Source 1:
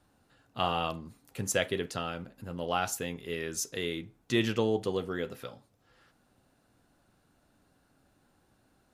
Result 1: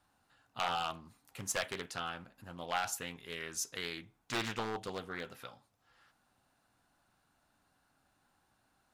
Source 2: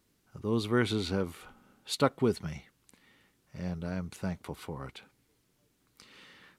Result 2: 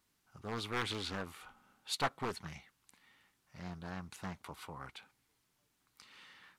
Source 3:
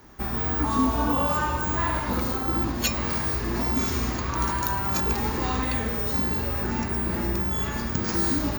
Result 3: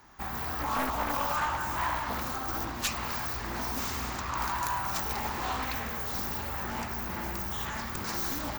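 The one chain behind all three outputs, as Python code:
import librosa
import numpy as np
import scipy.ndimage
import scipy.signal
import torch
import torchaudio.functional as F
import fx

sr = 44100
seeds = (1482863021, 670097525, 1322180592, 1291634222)

y = np.minimum(x, 2.0 * 10.0 ** (-22.0 / 20.0) - x)
y = fx.low_shelf_res(y, sr, hz=640.0, db=-6.5, q=1.5)
y = fx.doppler_dist(y, sr, depth_ms=0.51)
y = y * librosa.db_to_amplitude(-3.0)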